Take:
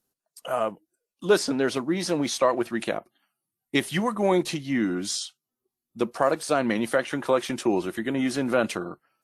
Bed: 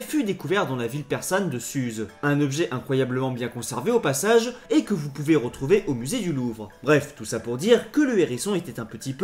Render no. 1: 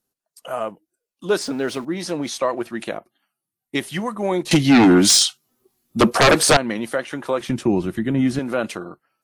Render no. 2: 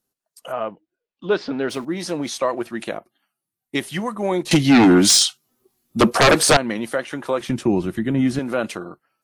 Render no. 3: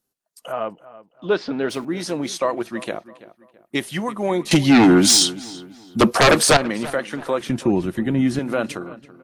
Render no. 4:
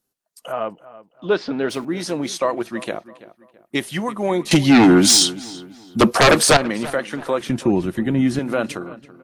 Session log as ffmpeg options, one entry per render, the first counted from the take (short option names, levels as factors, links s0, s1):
-filter_complex "[0:a]asettb=1/sr,asplit=3[s0][s1][s2];[s0]atrim=end=1.414[s3];[s1]atrim=start=1.41:end=1.85,asetpts=PTS-STARTPTS,afade=t=in:d=0.004:c=qsin,afade=t=out:st=0.436:d=0.004:c=qsin,aeval=exprs='val(0)+0.5*0.0106*sgn(val(0))':c=same[s4];[s2]atrim=start=1.846[s5];[s3][s4]acrossfade=d=0.004:c1=hsin:c2=qsin[s6];[s6][s5]acrossfade=d=0.004:c1=qsin:c2=hsin,asettb=1/sr,asplit=3[s7][s8][s9];[s7]atrim=end=4.514[s10];[s8]atrim=start=4.51:end=6.57,asetpts=PTS-STARTPTS,afade=t=in:d=0.004:c=qsin,afade=t=out:st=2.056:d=0.004:c=qsin,aeval=exprs='0.398*sin(PI/2*5.01*val(0)/0.398)':c=same[s11];[s9]atrim=start=6.566[s12];[s10][s11]acrossfade=d=0.004:c1=hsin:c2=qsin[s13];[s13][s12]acrossfade=d=0.004:c1=qsin:c2=hsin,asettb=1/sr,asplit=3[s14][s15][s16];[s14]atrim=end=7.404[s17];[s15]atrim=start=7.4:end=8.39,asetpts=PTS-STARTPTS,afade=t=in:d=0.004:c=qsin,afade=t=out:st=0.986:d=0.004:c=qsin,bass=f=250:g=15,treble=f=4000:g=-2[s18];[s16]atrim=start=8.386[s19];[s17][s18]acrossfade=d=0.004:c1=hsin:c2=qsin[s20];[s20][s19]acrossfade=d=0.004:c1=qsin:c2=hsin"
-filter_complex "[0:a]asplit=3[s0][s1][s2];[s0]afade=t=out:st=0.51:d=0.02[s3];[s1]lowpass=f=4000:w=0.5412,lowpass=f=4000:w=1.3066,afade=t=in:st=0.51:d=0.02,afade=t=out:st=1.69:d=0.02[s4];[s2]afade=t=in:st=1.69:d=0.02[s5];[s3][s4][s5]amix=inputs=3:normalize=0"
-filter_complex "[0:a]asplit=2[s0][s1];[s1]adelay=332,lowpass=f=2900:p=1,volume=0.141,asplit=2[s2][s3];[s3]adelay=332,lowpass=f=2900:p=1,volume=0.37,asplit=2[s4][s5];[s5]adelay=332,lowpass=f=2900:p=1,volume=0.37[s6];[s0][s2][s4][s6]amix=inputs=4:normalize=0"
-af "volume=1.12"